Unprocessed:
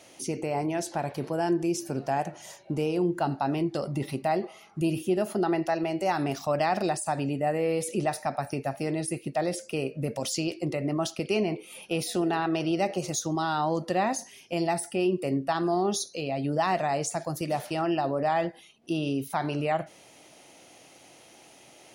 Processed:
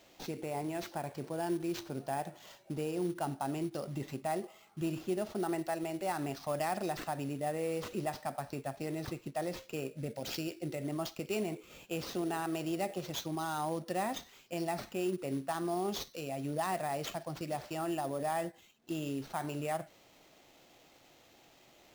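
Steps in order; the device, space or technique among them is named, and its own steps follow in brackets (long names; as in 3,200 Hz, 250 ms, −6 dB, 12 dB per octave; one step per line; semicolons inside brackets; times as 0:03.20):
early companding sampler (sample-rate reduction 10,000 Hz, jitter 0%; log-companded quantiser 6 bits)
0:09.95–0:10.83: parametric band 1,100 Hz −12 dB 0.24 octaves
level −8.5 dB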